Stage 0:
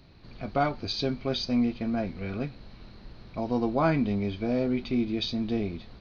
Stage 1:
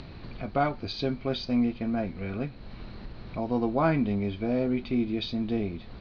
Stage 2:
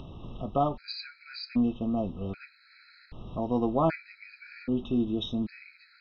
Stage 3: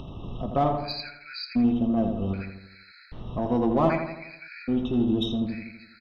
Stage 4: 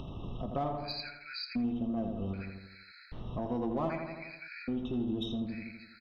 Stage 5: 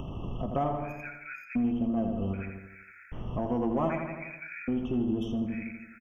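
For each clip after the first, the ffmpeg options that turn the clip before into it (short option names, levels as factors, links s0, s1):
-af "acompressor=mode=upward:threshold=0.0251:ratio=2.5,lowpass=3800"
-af "afftfilt=real='re*gt(sin(2*PI*0.64*pts/sr)*(1-2*mod(floor(b*sr/1024/1300),2)),0)':imag='im*gt(sin(2*PI*0.64*pts/sr)*(1-2*mod(floor(b*sr/1024/1300),2)),0)':win_size=1024:overlap=0.75"
-filter_complex "[0:a]asplit=2[s0][s1];[s1]asoftclip=type=tanh:threshold=0.0398,volume=0.596[s2];[s0][s2]amix=inputs=2:normalize=0,asplit=2[s3][s4];[s4]adelay=83,lowpass=f=2000:p=1,volume=0.562,asplit=2[s5][s6];[s6]adelay=83,lowpass=f=2000:p=1,volume=0.55,asplit=2[s7][s8];[s8]adelay=83,lowpass=f=2000:p=1,volume=0.55,asplit=2[s9][s10];[s10]adelay=83,lowpass=f=2000:p=1,volume=0.55,asplit=2[s11][s12];[s12]adelay=83,lowpass=f=2000:p=1,volume=0.55,asplit=2[s13][s14];[s14]adelay=83,lowpass=f=2000:p=1,volume=0.55,asplit=2[s15][s16];[s16]adelay=83,lowpass=f=2000:p=1,volume=0.55[s17];[s3][s5][s7][s9][s11][s13][s15][s17]amix=inputs=8:normalize=0"
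-af "acompressor=threshold=0.0224:ratio=2,volume=0.708"
-af "asuperstop=centerf=4300:order=12:qfactor=1.9,aecho=1:1:153|306:0.126|0.0302,volume=1.68"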